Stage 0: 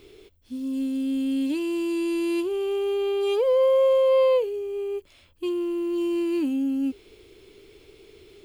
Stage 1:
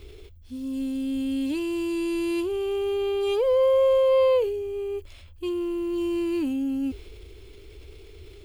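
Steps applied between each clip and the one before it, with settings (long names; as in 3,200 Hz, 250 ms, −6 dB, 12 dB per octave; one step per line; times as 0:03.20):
low shelf with overshoot 110 Hz +13.5 dB, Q 1.5
transient designer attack −1 dB, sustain +4 dB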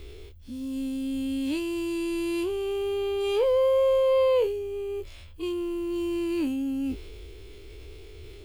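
every bin's largest magnitude spread in time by 60 ms
level −2.5 dB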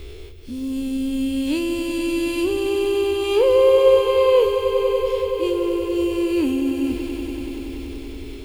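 echo that builds up and dies away 95 ms, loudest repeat 5, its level −11.5 dB
level +6.5 dB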